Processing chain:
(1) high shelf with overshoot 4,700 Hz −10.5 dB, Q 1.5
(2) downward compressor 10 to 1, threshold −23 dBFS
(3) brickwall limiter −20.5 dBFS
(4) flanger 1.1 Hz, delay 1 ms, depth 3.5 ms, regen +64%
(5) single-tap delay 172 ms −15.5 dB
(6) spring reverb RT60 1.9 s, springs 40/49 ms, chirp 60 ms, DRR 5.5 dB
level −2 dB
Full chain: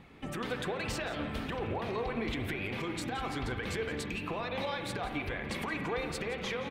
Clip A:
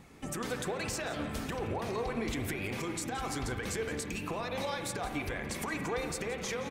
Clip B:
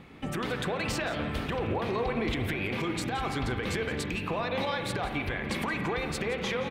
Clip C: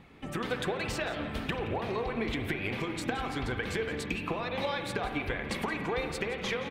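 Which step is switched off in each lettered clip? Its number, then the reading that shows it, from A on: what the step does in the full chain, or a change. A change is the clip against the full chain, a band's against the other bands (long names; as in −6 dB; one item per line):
1, 8 kHz band +8.5 dB
4, change in integrated loudness +4.5 LU
3, change in crest factor +6.0 dB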